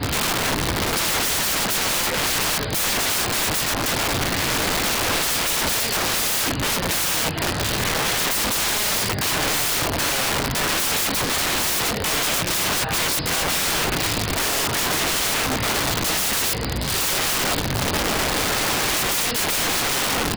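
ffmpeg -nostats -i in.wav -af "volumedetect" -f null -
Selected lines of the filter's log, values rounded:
mean_volume: -22.1 dB
max_volume: -17.0 dB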